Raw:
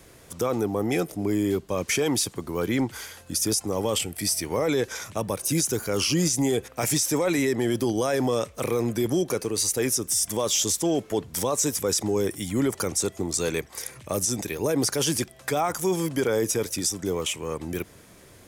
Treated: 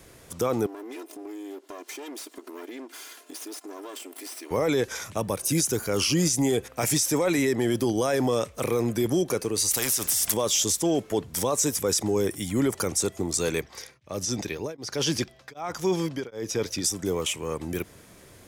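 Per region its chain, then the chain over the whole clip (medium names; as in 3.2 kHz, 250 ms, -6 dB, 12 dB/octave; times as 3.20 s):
0.66–4.51 s: comb filter that takes the minimum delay 2.9 ms + brick-wall FIR high-pass 240 Hz + compression 4:1, threshold -38 dBFS
9.71–10.34 s: treble shelf 4.7 kHz +12 dB + compression 5:1, threshold -20 dBFS + spectrum-flattening compressor 2:1
13.62–16.84 s: resonant high shelf 6.8 kHz -9.5 dB, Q 1.5 + tremolo of two beating tones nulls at 1.3 Hz
whole clip: none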